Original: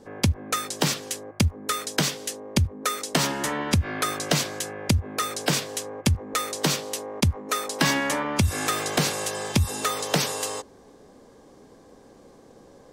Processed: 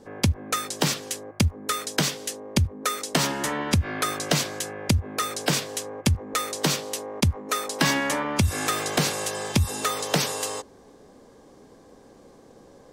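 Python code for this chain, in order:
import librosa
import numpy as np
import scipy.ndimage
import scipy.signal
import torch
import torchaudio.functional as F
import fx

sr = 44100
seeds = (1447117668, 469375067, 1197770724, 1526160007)

y = fx.dmg_crackle(x, sr, seeds[0], per_s=92.0, level_db=-54.0, at=(8.15, 8.93), fade=0.02)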